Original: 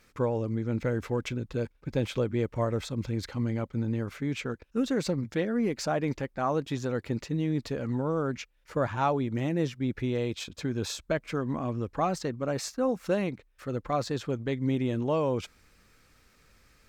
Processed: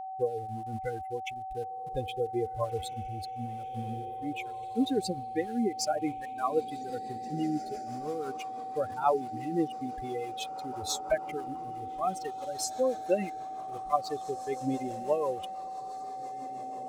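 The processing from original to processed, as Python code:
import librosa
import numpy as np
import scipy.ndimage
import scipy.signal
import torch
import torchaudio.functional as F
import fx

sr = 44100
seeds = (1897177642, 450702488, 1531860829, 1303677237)

p1 = fx.bin_expand(x, sr, power=3.0)
p2 = fx.peak_eq(p1, sr, hz=120.0, db=-8.0, octaves=0.55)
p3 = np.where(np.abs(p2) >= 10.0 ** (-49.0 / 20.0), p2, 0.0)
p4 = p2 + (p3 * librosa.db_to_amplitude(-4.5))
p5 = fx.graphic_eq_15(p4, sr, hz=(160, 1600, 10000), db=(-11, -4, 8))
p6 = p5 + fx.echo_diffused(p5, sr, ms=1932, feedback_pct=47, wet_db=-15.0, dry=0)
p7 = fx.rotary_switch(p6, sr, hz=1.0, then_hz=6.0, switch_at_s=5.27)
p8 = p7 + 10.0 ** (-41.0 / 20.0) * np.sin(2.0 * np.pi * 760.0 * np.arange(len(p7)) / sr)
y = p8 * librosa.db_to_amplitude(4.5)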